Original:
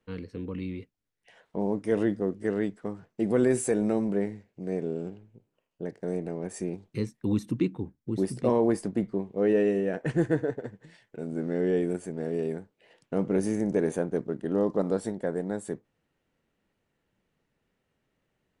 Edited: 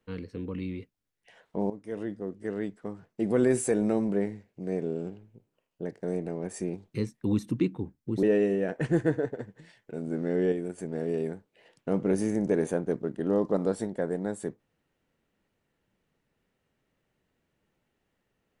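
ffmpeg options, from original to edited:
ffmpeg -i in.wav -filter_complex "[0:a]asplit=5[link_01][link_02][link_03][link_04][link_05];[link_01]atrim=end=1.7,asetpts=PTS-STARTPTS,afade=type=out:start_time=1.696:duration=0.004:curve=hsin:silence=0.211349[link_06];[link_02]atrim=start=1.7:end=8.232,asetpts=PTS-STARTPTS,afade=type=in:duration=1.82:silence=0.211349[link_07];[link_03]atrim=start=9.478:end=11.772[link_08];[link_04]atrim=start=11.768:end=12.032,asetpts=PTS-STARTPTS,volume=-5dB[link_09];[link_05]atrim=start=12.028[link_10];[link_06][link_07]concat=n=2:v=0:a=1[link_11];[link_11][link_08]acrossfade=duration=0.004:curve1=hsin:curve2=hsin[link_12];[link_12][link_09]acrossfade=duration=0.004:curve1=hsin:curve2=hsin[link_13];[link_13][link_10]acrossfade=duration=0.004:curve1=hsin:curve2=hsin" out.wav

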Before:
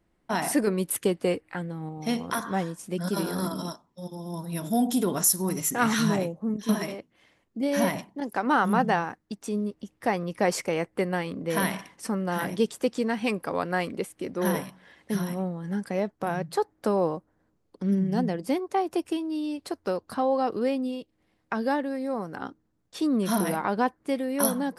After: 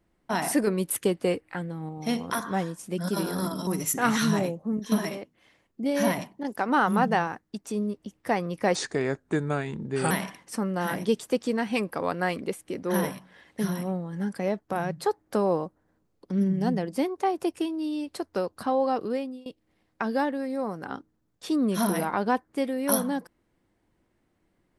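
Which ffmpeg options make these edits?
ffmpeg -i in.wav -filter_complex "[0:a]asplit=5[link_01][link_02][link_03][link_04][link_05];[link_01]atrim=end=3.672[link_06];[link_02]atrim=start=5.438:end=10.524[link_07];[link_03]atrim=start=10.52:end=11.62,asetpts=PTS-STARTPTS,asetrate=35721,aresample=44100[link_08];[link_04]atrim=start=11.616:end=20.97,asetpts=PTS-STARTPTS,afade=type=out:start_time=8.694:duration=0.66:curve=qsin:silence=0.0794328[link_09];[link_05]atrim=start=20.97,asetpts=PTS-STARTPTS,afade=type=in:duration=0.004:curve=hsin:silence=0.0794328[link_10];[link_06][link_07]acrossfade=duration=0.004:curve1=hsin:curve2=hsin[link_11];[link_11][link_08]acrossfade=duration=0.004:curve1=hsin:curve2=hsin[link_12];[link_09][link_10]concat=n=2:v=0:a=1[link_13];[link_12][link_13]acrossfade=duration=0.004:curve1=hsin:curve2=hsin" out.wav

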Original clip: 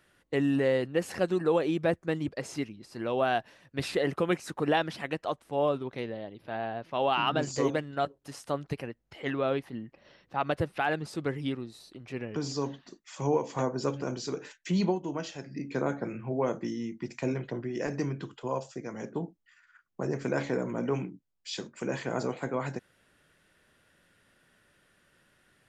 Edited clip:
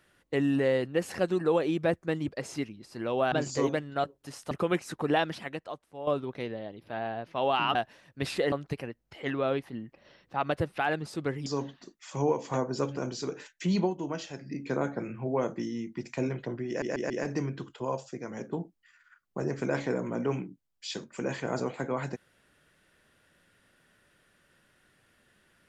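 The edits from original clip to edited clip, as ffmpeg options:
ffmpeg -i in.wav -filter_complex "[0:a]asplit=10[link_01][link_02][link_03][link_04][link_05][link_06][link_07][link_08][link_09][link_10];[link_01]atrim=end=3.322[link_11];[link_02]atrim=start=7.328:end=8.522[link_12];[link_03]atrim=start=4.088:end=5.65,asetpts=PTS-STARTPTS,afade=type=out:start_time=0.802:duration=0.76:curve=qua:silence=0.266073[link_13];[link_04]atrim=start=5.65:end=7.332,asetpts=PTS-STARTPTS,afade=type=in:duration=0.004:curve=hsin:silence=0.266073[link_14];[link_05]atrim=start=3.318:end=4.092[link_15];[link_06]atrim=start=8.518:end=11.462[link_16];[link_07]atrim=start=12.508:end=17.872[link_17];[link_08]atrim=start=17.728:end=17.872[link_18];[link_09]atrim=start=17.728:end=17.872[link_19];[link_10]atrim=start=17.728[link_20];[link_11][link_12]acrossfade=duration=0.004:curve1=hsin:curve2=hsin[link_21];[link_13][link_14]concat=n=2:v=0:a=1[link_22];[link_21][link_22]acrossfade=duration=0.004:curve1=hsin:curve2=hsin[link_23];[link_23][link_15]acrossfade=duration=0.004:curve1=hsin:curve2=hsin[link_24];[link_24][link_16]acrossfade=duration=0.004:curve1=hsin:curve2=hsin[link_25];[link_25][link_17]acrossfade=duration=0.004:curve1=hsin:curve2=hsin[link_26];[link_26][link_18]acrossfade=duration=0.004:curve1=hsin:curve2=hsin[link_27];[link_27][link_19]acrossfade=duration=0.004:curve1=hsin:curve2=hsin[link_28];[link_28][link_20]acrossfade=duration=0.004:curve1=hsin:curve2=hsin" out.wav

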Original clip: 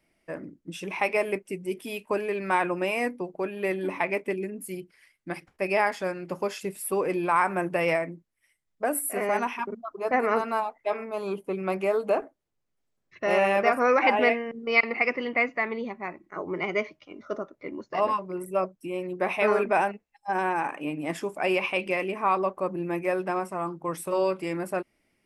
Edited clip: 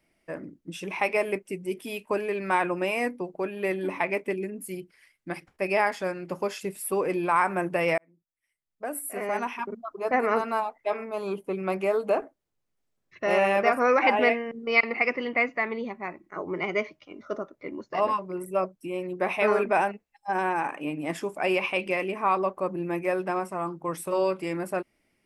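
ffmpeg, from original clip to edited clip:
ffmpeg -i in.wav -filter_complex "[0:a]asplit=2[link_01][link_02];[link_01]atrim=end=7.98,asetpts=PTS-STARTPTS,afade=type=out:start_time=7.976:duration=0.004:curve=hsin[link_03];[link_02]atrim=start=7.98,asetpts=PTS-STARTPTS,afade=type=in:duration=1.9[link_04];[link_03][link_04]concat=n=2:v=0:a=1" out.wav

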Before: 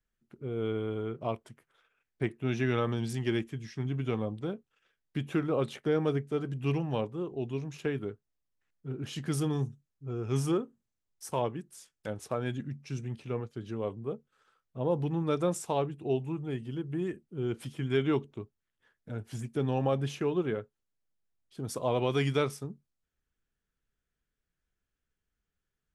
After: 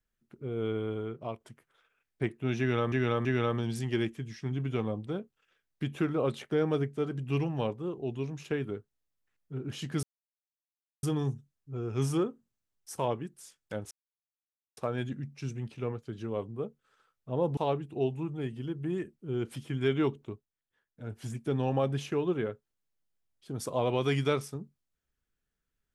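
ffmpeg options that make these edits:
ffmpeg -i in.wav -filter_complex "[0:a]asplit=9[link_01][link_02][link_03][link_04][link_05][link_06][link_07][link_08][link_09];[link_01]atrim=end=1.4,asetpts=PTS-STARTPTS,afade=type=out:start_time=0.91:duration=0.49:silence=0.473151[link_10];[link_02]atrim=start=1.4:end=2.922,asetpts=PTS-STARTPTS,afade=type=in:duration=0.004:curve=hsin:silence=0.473151[link_11];[link_03]atrim=start=2.588:end=2.922[link_12];[link_04]atrim=start=2.588:end=9.37,asetpts=PTS-STARTPTS,afade=type=out:start_time=6.778:duration=0.004:curve=hsin,apad=pad_dur=1[link_13];[link_05]atrim=start=9.37:end=12.25,asetpts=PTS-STARTPTS,afade=type=in:duration=0.004:curve=hsin,afade=type=out:start_time=2.876:duration=0.004:curve=hsin,apad=pad_dur=0.86[link_14];[link_06]atrim=start=12.25:end=15.052,asetpts=PTS-STARTPTS,afade=type=in:duration=0.004:curve=hsin[link_15];[link_07]atrim=start=15.658:end=18.56,asetpts=PTS-STARTPTS,afade=type=out:start_time=2.762:duration=0.14:silence=0.375837[link_16];[link_08]atrim=start=18.56:end=19.07,asetpts=PTS-STARTPTS,volume=-8.5dB[link_17];[link_09]atrim=start=19.07,asetpts=PTS-STARTPTS,afade=type=in:duration=0.14:silence=0.375837[link_18];[link_10][link_11]concat=n=2:v=0:a=1[link_19];[link_19][link_12]acrossfade=duration=0.004:curve1=hsin:curve2=hsin[link_20];[link_13][link_14][link_15]concat=n=3:v=0:a=1[link_21];[link_20][link_21]acrossfade=duration=0.004:curve1=hsin:curve2=hsin[link_22];[link_16][link_17][link_18]concat=n=3:v=0:a=1[link_23];[link_22][link_23]acrossfade=duration=0.004:curve1=hsin:curve2=hsin" out.wav

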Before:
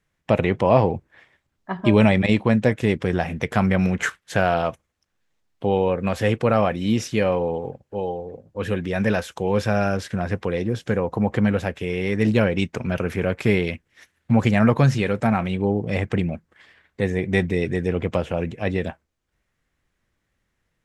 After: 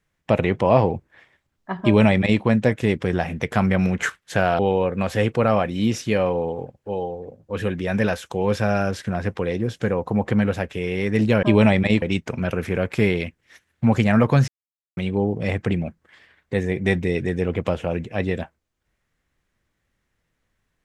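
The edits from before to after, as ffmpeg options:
ffmpeg -i in.wav -filter_complex "[0:a]asplit=6[link_01][link_02][link_03][link_04][link_05][link_06];[link_01]atrim=end=4.592[link_07];[link_02]atrim=start=5.648:end=12.492[link_08];[link_03]atrim=start=1.818:end=2.412[link_09];[link_04]atrim=start=12.488:end=14.95,asetpts=PTS-STARTPTS,afade=type=out:start_time=2.458:duration=0.004:curve=hsin[link_10];[link_05]atrim=start=14.95:end=15.44,asetpts=PTS-STARTPTS,volume=0[link_11];[link_06]atrim=start=15.44,asetpts=PTS-STARTPTS,afade=type=in:duration=0.004:curve=hsin[link_12];[link_07][link_08]acrossfade=duration=0.004:curve1=hsin:curve2=hsin[link_13];[link_13][link_09]acrossfade=duration=0.004:curve1=hsin:curve2=hsin[link_14];[link_10][link_11][link_12]concat=n=3:v=0:a=1[link_15];[link_14][link_15]acrossfade=duration=0.004:curve1=hsin:curve2=hsin" out.wav

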